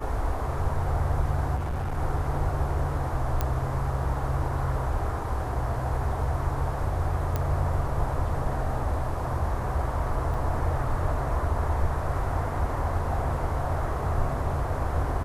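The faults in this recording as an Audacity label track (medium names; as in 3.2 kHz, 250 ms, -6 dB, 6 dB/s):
1.550000	1.980000	clipped -26 dBFS
3.410000	3.410000	pop -12 dBFS
7.360000	7.360000	pop -14 dBFS
10.340000	10.340000	dropout 2.2 ms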